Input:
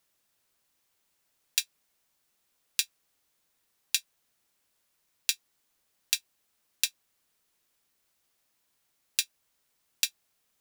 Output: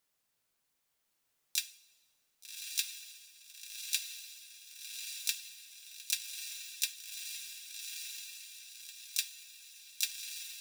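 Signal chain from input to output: diffused feedback echo 1.182 s, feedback 50%, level -4 dB; two-slope reverb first 0.41 s, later 1.6 s, from -16 dB, DRR 10.5 dB; harmoniser +7 st -4 dB; gain -6.5 dB

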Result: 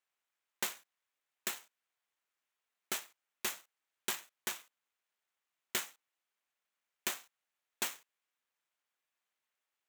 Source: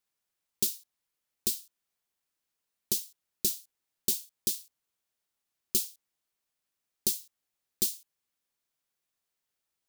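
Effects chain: median filter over 9 samples; HPF 1300 Hz 6 dB/oct; gain +4.5 dB

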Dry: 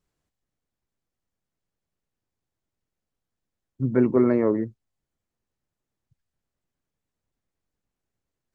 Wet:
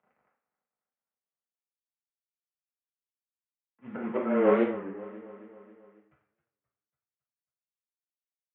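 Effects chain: CVSD 16 kbps; auto swell 0.732 s; feedback echo 0.271 s, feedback 57%, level -16 dB; frequency shift -15 Hz; speaker cabinet 340–2200 Hz, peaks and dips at 350 Hz -9 dB, 800 Hz +4 dB, 1300 Hz +4 dB; two-slope reverb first 0.47 s, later 1.5 s, from -19 dB, DRR -5 dB; record warp 33 1/3 rpm, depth 160 cents; gain +7.5 dB

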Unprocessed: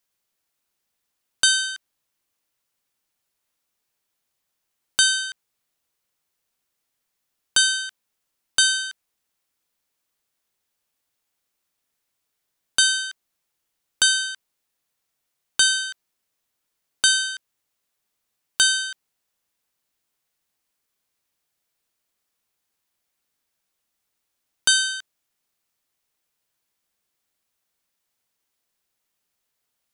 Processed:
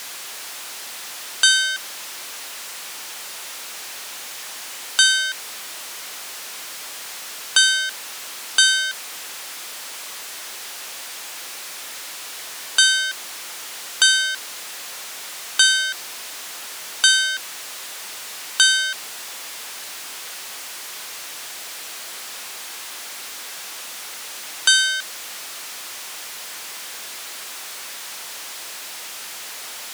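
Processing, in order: zero-crossing step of -27 dBFS; weighting filter A; gain +1.5 dB

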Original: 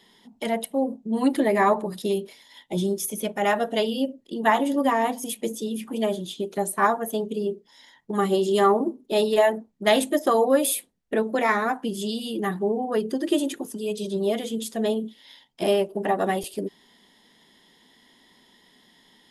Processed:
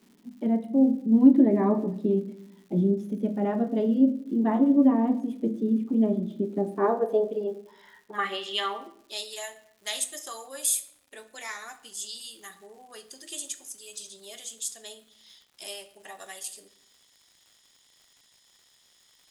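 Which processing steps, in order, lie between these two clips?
band-pass sweep 240 Hz -> 7200 Hz, 6.52–9.3; shoebox room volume 150 m³, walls mixed, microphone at 0.32 m; crackle 260/s -56 dBFS; gain +7 dB

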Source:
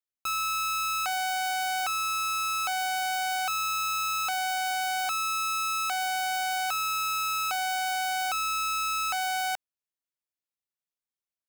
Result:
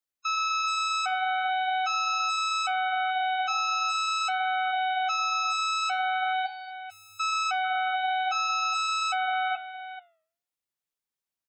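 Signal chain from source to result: 6.46–7.2 passive tone stack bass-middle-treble 10-0-1; echo 0.439 s -12 dB; spectral gate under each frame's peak -15 dB strong; flange 0.44 Hz, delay 3.7 ms, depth 6.6 ms, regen -88%; gain +7 dB

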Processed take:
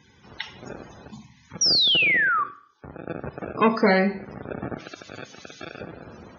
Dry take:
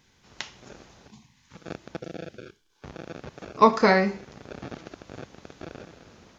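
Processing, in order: 2.18–3.07 resonator 280 Hz, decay 0.4 s, harmonics odd, mix 60%; 1.61–2.44 painted sound fall 1100–5900 Hz -23 dBFS; in parallel at +3 dB: compressor, threshold -37 dBFS, peak gain reduction 24 dB; on the sum: hard clip -13 dBFS, distortion -13 dB; dynamic EQ 1000 Hz, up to -4 dB, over -33 dBFS, Q 1.3; HPF 59 Hz; 4.8–5.81 tilt shelf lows -8.5 dB, about 1300 Hz; loudest bins only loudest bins 64; Schroeder reverb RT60 0.54 s, combs from 27 ms, DRR 15 dB; gain +1.5 dB

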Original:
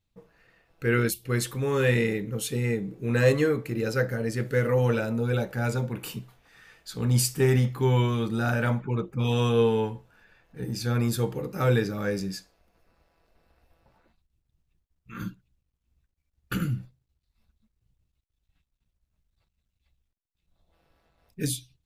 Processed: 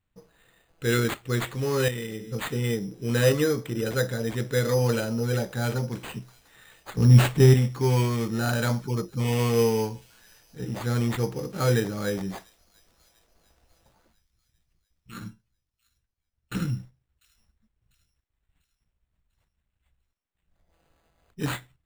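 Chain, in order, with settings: 1.88–2.32 resonator 110 Hz, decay 1.5 s, harmonics all, mix 70%; 6.97–7.54 low shelf 270 Hz +11 dB; careless resampling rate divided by 8×, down none, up hold; 15.19–16.55 resonator 110 Hz, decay 0.21 s, harmonics all, mix 70%; on a send: thin delay 0.696 s, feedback 48%, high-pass 3300 Hz, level -21 dB

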